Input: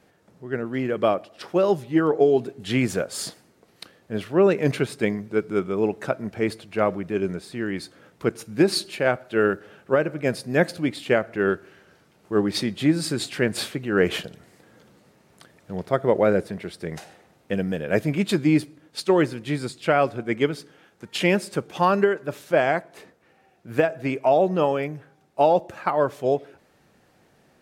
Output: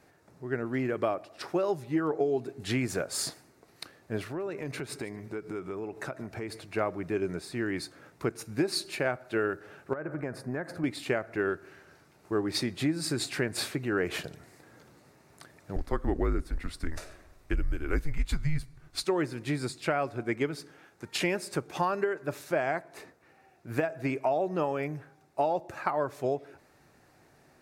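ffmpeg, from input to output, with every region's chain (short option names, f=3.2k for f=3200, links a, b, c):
-filter_complex "[0:a]asettb=1/sr,asplit=3[a][b][c];[a]atrim=end=4.254[d];[b]atrim=start=4.25:end=6.65,asetpts=PTS-STARTPTS,afade=t=in:d=0.004:c=qsin,afade=t=out:st=2.396:d=0.004:c=qsin,acompressor=threshold=-31dB:ratio=6:attack=3.2:release=140:knee=1:detection=peak,aecho=1:1:149:0.112,atrim=end_sample=105840[e];[c]atrim=start=6.646[f];[d][e]acrossfade=d=0.004:c1=hsin:c2=qsin[g];[g][f]acrossfade=d=0.004:c1=qsin:c2=hsin,asettb=1/sr,asplit=3[h][i][j];[h]atrim=end=9.934[k];[i]atrim=start=9.93:end=10.84,asetpts=PTS-STARTPTS,afade=t=in:d=0.004:c=qsin,afade=t=out:st=0.906:d=0.004:c=qsin,highshelf=f=2.2k:t=q:w=1.5:g=-11,acompressor=threshold=-27dB:ratio=12:attack=3.2:release=140:knee=1:detection=peak[l];[j]atrim=start=10.836[m];[k][l]acrossfade=d=0.004:c1=hsin:c2=qsin[n];[n][m]acrossfade=d=0.004:c1=qsin:c2=hsin,asettb=1/sr,asplit=3[o][p][q];[o]atrim=end=15.764[r];[p]atrim=start=15.76:end=19.04,asetpts=PTS-STARTPTS,afade=t=in:d=0.004:c=qsin,afade=t=out:st=3.276:d=0.004:c=qsin,lowshelf=f=250:t=q:w=1.5:g=6.5,afreqshift=-160[s];[q]atrim=start=19.036[t];[r][s]acrossfade=d=0.004:c1=hsin:c2=qsin[u];[u][t]acrossfade=d=0.004:c1=qsin:c2=hsin,equalizer=f=200:t=o:w=0.33:g=-9,equalizer=f=500:t=o:w=0.33:g=-5,equalizer=f=3.15k:t=o:w=0.33:g=-8,acompressor=threshold=-27dB:ratio=3"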